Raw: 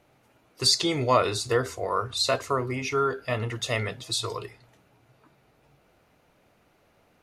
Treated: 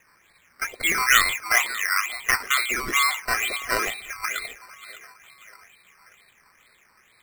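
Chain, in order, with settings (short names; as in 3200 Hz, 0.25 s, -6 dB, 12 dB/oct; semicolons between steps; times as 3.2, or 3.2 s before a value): inverted band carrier 2500 Hz; thinning echo 0.587 s, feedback 49%, high-pass 360 Hz, level -15.5 dB; decimation with a swept rate 10×, swing 60% 2.2 Hz; gain +3.5 dB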